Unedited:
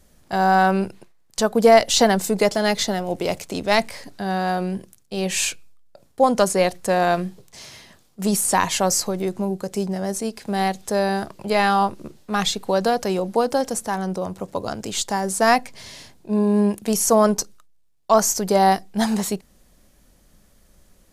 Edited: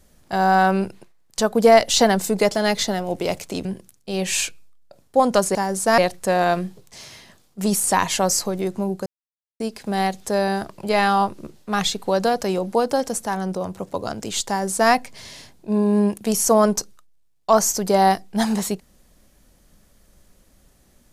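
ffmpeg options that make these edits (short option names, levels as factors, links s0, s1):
-filter_complex "[0:a]asplit=6[s0][s1][s2][s3][s4][s5];[s0]atrim=end=3.652[s6];[s1]atrim=start=4.688:end=6.592[s7];[s2]atrim=start=15.088:end=15.522[s8];[s3]atrim=start=6.588:end=9.67,asetpts=PTS-STARTPTS,afade=t=out:st=3.078:d=0.004:c=hsin[s9];[s4]atrim=start=9.67:end=10.21,asetpts=PTS-STARTPTS,volume=0[s10];[s5]atrim=start=10.21,asetpts=PTS-STARTPTS,afade=t=in:d=0.004:c=hsin[s11];[s6][s7]acrossfade=d=0.004:c1=hsin:c2=hsin[s12];[s12][s8]acrossfade=d=0.004:c1=hsin:c2=hsin[s13];[s9][s10][s11]concat=n=3:v=0:a=1[s14];[s13][s14]acrossfade=d=0.004:c1=hsin:c2=hsin"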